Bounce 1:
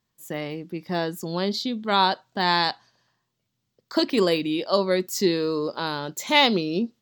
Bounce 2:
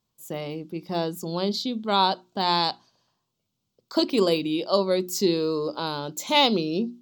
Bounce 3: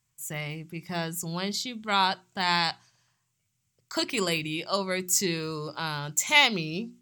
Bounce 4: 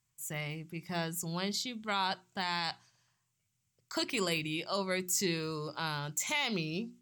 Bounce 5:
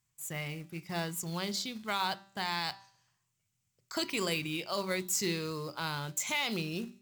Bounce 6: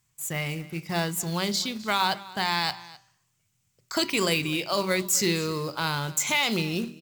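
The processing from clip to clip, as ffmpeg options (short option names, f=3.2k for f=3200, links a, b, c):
-af "equalizer=f=1.8k:t=o:w=0.46:g=-13,bandreject=f=60:t=h:w=6,bandreject=f=120:t=h:w=6,bandreject=f=180:t=h:w=6,bandreject=f=240:t=h:w=6,bandreject=f=300:t=h:w=6,bandreject=f=360:t=h:w=6"
-af "equalizer=f=125:t=o:w=1:g=7,equalizer=f=250:t=o:w=1:g=-11,equalizer=f=500:t=o:w=1:g=-9,equalizer=f=1k:t=o:w=1:g=-4,equalizer=f=2k:t=o:w=1:g=11,equalizer=f=4k:t=o:w=1:g=-9,equalizer=f=8k:t=o:w=1:g=11,volume=1dB"
-af "alimiter=limit=-17dB:level=0:latency=1:release=32,volume=-4dB"
-af "acrusher=bits=4:mode=log:mix=0:aa=0.000001,bandreject=f=195.8:t=h:w=4,bandreject=f=391.6:t=h:w=4,bandreject=f=587.4:t=h:w=4,bandreject=f=783.2:t=h:w=4,bandreject=f=979:t=h:w=4,bandreject=f=1.1748k:t=h:w=4,bandreject=f=1.3706k:t=h:w=4,bandreject=f=1.5664k:t=h:w=4,bandreject=f=1.7622k:t=h:w=4,bandreject=f=1.958k:t=h:w=4,bandreject=f=2.1538k:t=h:w=4,bandreject=f=2.3496k:t=h:w=4,bandreject=f=2.5454k:t=h:w=4,bandreject=f=2.7412k:t=h:w=4,bandreject=f=2.937k:t=h:w=4,bandreject=f=3.1328k:t=h:w=4,bandreject=f=3.3286k:t=h:w=4,bandreject=f=3.5244k:t=h:w=4,bandreject=f=3.7202k:t=h:w=4,bandreject=f=3.916k:t=h:w=4,bandreject=f=4.1118k:t=h:w=4,bandreject=f=4.3076k:t=h:w=4,bandreject=f=4.5034k:t=h:w=4,bandreject=f=4.6992k:t=h:w=4,bandreject=f=4.895k:t=h:w=4,bandreject=f=5.0908k:t=h:w=4,bandreject=f=5.2866k:t=h:w=4,bandreject=f=5.4824k:t=h:w=4,bandreject=f=5.6782k:t=h:w=4,bandreject=f=5.874k:t=h:w=4,bandreject=f=6.0698k:t=h:w=4,bandreject=f=6.2656k:t=h:w=4,bandreject=f=6.4614k:t=h:w=4"
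-af "aecho=1:1:257:0.106,volume=8dB"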